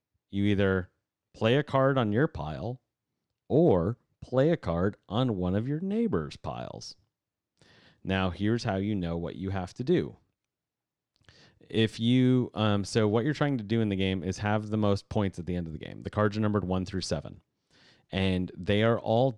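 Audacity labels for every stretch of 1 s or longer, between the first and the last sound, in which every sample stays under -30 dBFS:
6.780000	8.050000	silence
10.080000	11.730000	silence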